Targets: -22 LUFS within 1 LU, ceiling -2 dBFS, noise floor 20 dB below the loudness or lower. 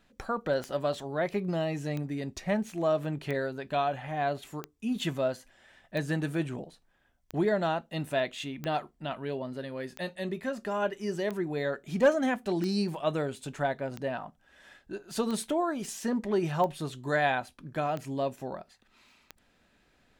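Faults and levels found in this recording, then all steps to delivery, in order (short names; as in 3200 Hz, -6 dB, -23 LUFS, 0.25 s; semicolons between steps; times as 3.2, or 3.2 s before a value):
clicks 15; loudness -31.5 LUFS; peak -13.0 dBFS; loudness target -22.0 LUFS
-> de-click; gain +9.5 dB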